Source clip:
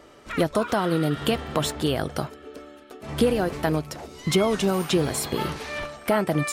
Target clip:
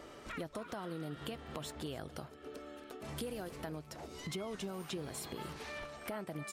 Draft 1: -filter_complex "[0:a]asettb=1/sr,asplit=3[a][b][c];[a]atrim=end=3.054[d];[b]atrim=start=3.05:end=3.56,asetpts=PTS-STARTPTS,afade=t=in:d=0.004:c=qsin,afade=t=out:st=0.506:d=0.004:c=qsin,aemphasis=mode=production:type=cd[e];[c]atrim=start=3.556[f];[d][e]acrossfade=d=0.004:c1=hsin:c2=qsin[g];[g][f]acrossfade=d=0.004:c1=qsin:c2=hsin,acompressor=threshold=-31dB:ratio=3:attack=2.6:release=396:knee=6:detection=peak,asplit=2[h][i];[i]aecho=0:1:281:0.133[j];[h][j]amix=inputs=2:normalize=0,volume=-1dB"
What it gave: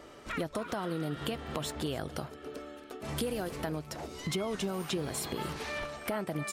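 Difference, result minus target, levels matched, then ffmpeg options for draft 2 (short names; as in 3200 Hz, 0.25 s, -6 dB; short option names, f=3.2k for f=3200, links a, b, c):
compressor: peak gain reduction -7.5 dB
-filter_complex "[0:a]asettb=1/sr,asplit=3[a][b][c];[a]atrim=end=3.054[d];[b]atrim=start=3.05:end=3.56,asetpts=PTS-STARTPTS,afade=t=in:d=0.004:c=qsin,afade=t=out:st=0.506:d=0.004:c=qsin,aemphasis=mode=production:type=cd[e];[c]atrim=start=3.556[f];[d][e]acrossfade=d=0.004:c1=hsin:c2=qsin[g];[g][f]acrossfade=d=0.004:c1=qsin:c2=hsin,acompressor=threshold=-42.5dB:ratio=3:attack=2.6:release=396:knee=6:detection=peak,asplit=2[h][i];[i]aecho=0:1:281:0.133[j];[h][j]amix=inputs=2:normalize=0,volume=-1dB"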